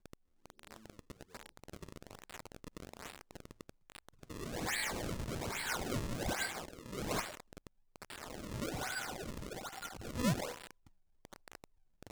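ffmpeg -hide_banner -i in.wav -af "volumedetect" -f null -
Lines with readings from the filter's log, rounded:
mean_volume: -42.8 dB
max_volume: -20.9 dB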